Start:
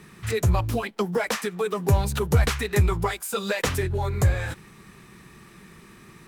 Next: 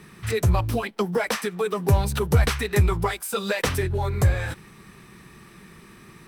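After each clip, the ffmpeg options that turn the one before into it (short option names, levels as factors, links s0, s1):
-af "bandreject=f=6900:w=10,volume=1.12"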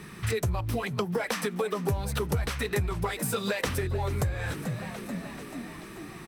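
-filter_complex "[0:a]asplit=7[s0][s1][s2][s3][s4][s5][s6];[s1]adelay=436,afreqshift=58,volume=0.141[s7];[s2]adelay=872,afreqshift=116,volume=0.0891[s8];[s3]adelay=1308,afreqshift=174,volume=0.0562[s9];[s4]adelay=1744,afreqshift=232,volume=0.0355[s10];[s5]adelay=2180,afreqshift=290,volume=0.0221[s11];[s6]adelay=2616,afreqshift=348,volume=0.014[s12];[s0][s7][s8][s9][s10][s11][s12]amix=inputs=7:normalize=0,acompressor=threshold=0.0355:ratio=6,volume=1.41"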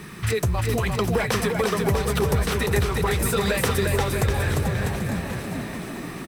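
-af "acrusher=bits=9:mix=0:aa=0.000001,aecho=1:1:350|647.5|900.4|1115|1298:0.631|0.398|0.251|0.158|0.1,volume=1.78"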